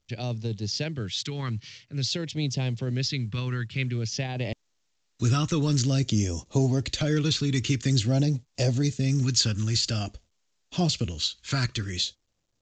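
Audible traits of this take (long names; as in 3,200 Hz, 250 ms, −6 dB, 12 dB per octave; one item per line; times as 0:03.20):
phaser sweep stages 2, 0.5 Hz, lowest notch 650–1,400 Hz
mu-law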